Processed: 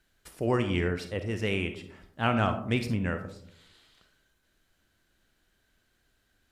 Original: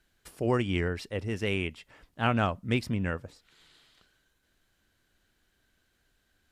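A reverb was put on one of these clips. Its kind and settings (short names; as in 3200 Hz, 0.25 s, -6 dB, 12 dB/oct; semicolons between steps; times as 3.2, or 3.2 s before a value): digital reverb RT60 0.71 s, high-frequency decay 0.3×, pre-delay 10 ms, DRR 7.5 dB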